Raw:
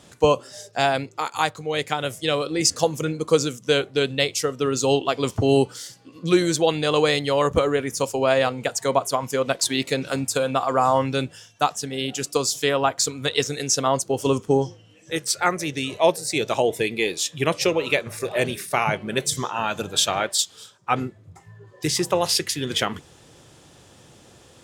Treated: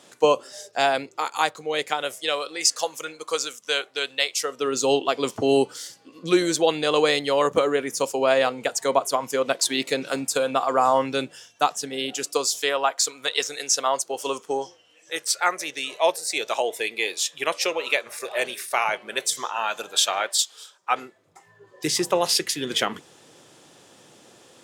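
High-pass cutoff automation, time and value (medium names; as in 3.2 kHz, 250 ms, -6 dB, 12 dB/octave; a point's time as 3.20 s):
1.73 s 300 Hz
2.61 s 790 Hz
4.32 s 790 Hz
4.79 s 260 Hz
11.96 s 260 Hz
12.89 s 600 Hz
21.07 s 600 Hz
21.86 s 220 Hz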